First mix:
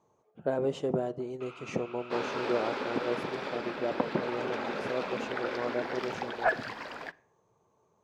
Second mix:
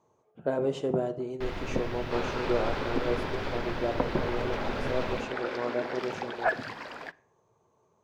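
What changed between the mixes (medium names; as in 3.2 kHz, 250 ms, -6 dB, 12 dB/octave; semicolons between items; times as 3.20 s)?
speech: send +9.0 dB; first sound: remove two resonant band-passes 1.8 kHz, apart 0.96 oct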